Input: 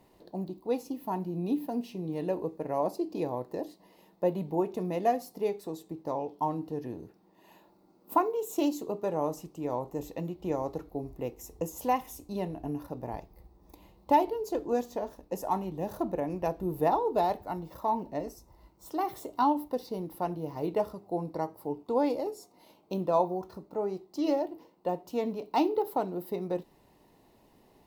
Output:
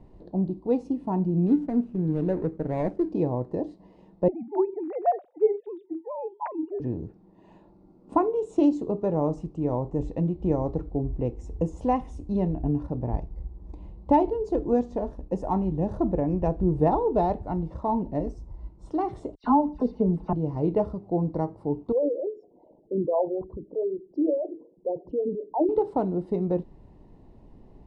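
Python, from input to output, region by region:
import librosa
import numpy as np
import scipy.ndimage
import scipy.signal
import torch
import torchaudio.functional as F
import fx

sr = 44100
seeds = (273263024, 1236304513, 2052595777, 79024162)

y = fx.chain(x, sr, fx.median_filter(points=41),
    fx.peak_eq(hz=14000.0, db=7.5, octaves=1.1), at=(1.47, 3.12))
y = fx.chain(y, sr, fx.sine_speech(),
    fx.highpass(hz=260.0, slope=6), at=(4.28, 6.8))
y = fx.chain(y, sr, fx.high_shelf(hz=2000.0, db=-8.5),
    fx.comb(ms=4.7, depth=0.91),
    fx.dispersion(late='lows', ms=89.0, hz=2400.0), at=(19.35, 20.33))
y = fx.chain(y, sr, fx.envelope_sharpen(power=3.0),
    fx.spacing_loss(db_at_10k=37), at=(21.92, 25.69))
y = scipy.signal.sosfilt(scipy.signal.butter(16, 10000.0, 'lowpass', fs=sr, output='sos'), y)
y = fx.tilt_eq(y, sr, slope=-4.5)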